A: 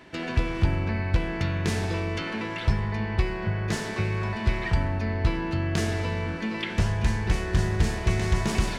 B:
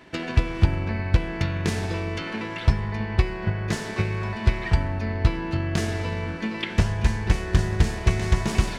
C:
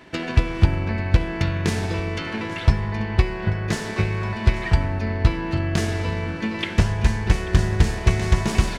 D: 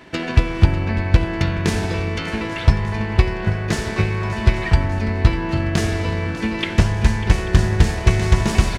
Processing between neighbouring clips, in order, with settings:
transient designer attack +5 dB, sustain −1 dB
single-tap delay 838 ms −18 dB; level +2.5 dB
repeating echo 596 ms, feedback 60%, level −15 dB; level +3 dB

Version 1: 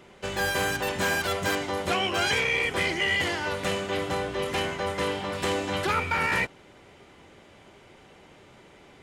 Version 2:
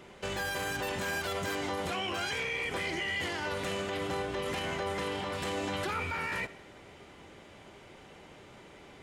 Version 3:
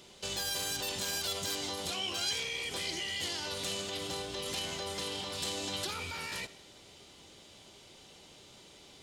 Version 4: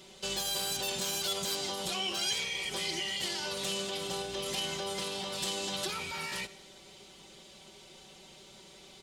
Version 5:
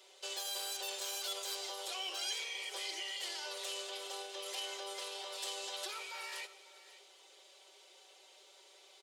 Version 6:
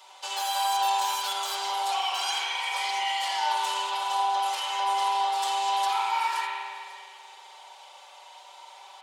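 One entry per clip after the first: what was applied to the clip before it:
brickwall limiter −26 dBFS, peak gain reduction 11.5 dB; convolution reverb RT60 1.1 s, pre-delay 5 ms, DRR 15.5 dB
high shelf with overshoot 2,800 Hz +12 dB, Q 1.5; level −6 dB
comb filter 5.3 ms, depth 69%
Butterworth high-pass 410 Hz 36 dB per octave; single-tap delay 542 ms −17.5 dB; level −6.5 dB
high-pass with resonance 890 Hz, resonance Q 6.6; spring reverb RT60 2 s, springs 43 ms, chirp 45 ms, DRR −2 dB; level +6 dB

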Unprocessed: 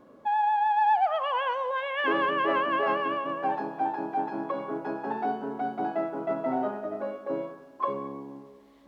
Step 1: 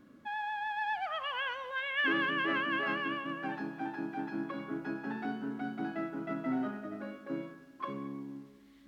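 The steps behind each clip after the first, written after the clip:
flat-topped bell 660 Hz −13.5 dB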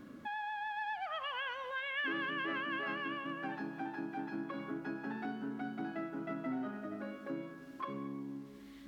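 downward compressor 2 to 1, threshold −52 dBFS, peak gain reduction 14 dB
level +6.5 dB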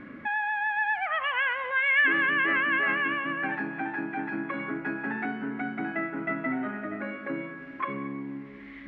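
low-pass with resonance 2,100 Hz, resonance Q 4.2
level +7 dB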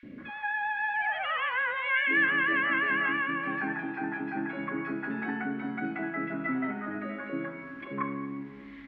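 three-band delay without the direct sound highs, lows, mids 30/180 ms, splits 650/2,300 Hz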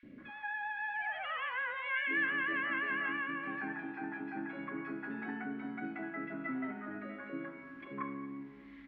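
convolution reverb RT60 0.65 s, pre-delay 3 ms, DRR 17.5 dB
level −8 dB

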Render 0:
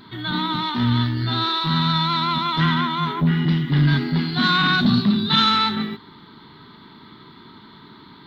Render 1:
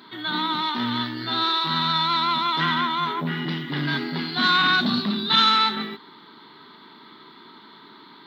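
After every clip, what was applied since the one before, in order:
high-pass filter 310 Hz 12 dB per octave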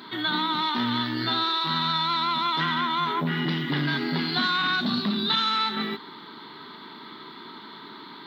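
downward compressor 6 to 1, threshold −27 dBFS, peak gain reduction 12.5 dB
level +4.5 dB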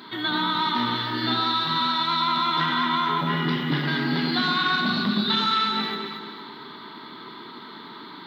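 delay that swaps between a low-pass and a high-pass 114 ms, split 1,600 Hz, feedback 65%, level −2 dB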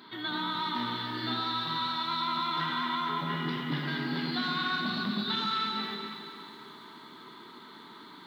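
feedback echo at a low word length 277 ms, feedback 55%, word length 8 bits, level −12 dB
level −8.5 dB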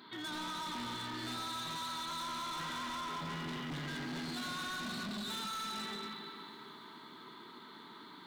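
hard clipping −35 dBFS, distortion −7 dB
level −3.5 dB

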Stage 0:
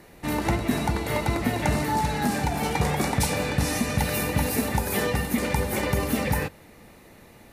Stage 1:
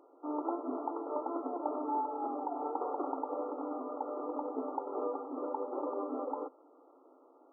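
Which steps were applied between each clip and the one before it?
brick-wall band-pass 250–1,400 Hz
level −7.5 dB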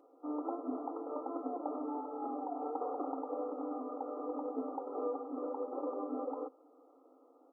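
parametric band 980 Hz −7.5 dB 0.24 octaves
comb filter 4 ms, depth 50%
level −2.5 dB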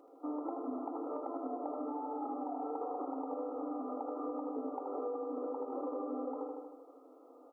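repeating echo 78 ms, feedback 56%, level −5.5 dB
downward compressor 5 to 1, threshold −40 dBFS, peak gain reduction 9 dB
level +4 dB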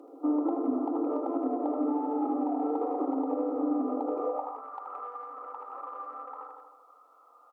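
far-end echo of a speakerphone 170 ms, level −22 dB
harmonic generator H 6 −43 dB, 7 −44 dB, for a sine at −26 dBFS
high-pass filter sweep 290 Hz → 1,300 Hz, 0:04.04–0:04.66
level +5 dB

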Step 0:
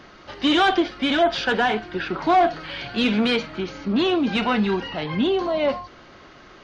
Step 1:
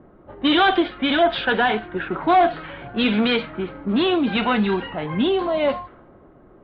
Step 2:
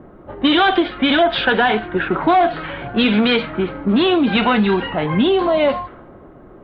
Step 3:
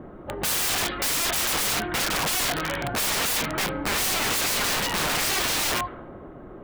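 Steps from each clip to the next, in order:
low-pass that shuts in the quiet parts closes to 520 Hz, open at −15.5 dBFS; elliptic low-pass filter 3,800 Hz, stop band 80 dB; level +2 dB
downward compressor 3 to 1, threshold −20 dBFS, peak gain reduction 6.5 dB; level +7.5 dB
wrap-around overflow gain 20 dB

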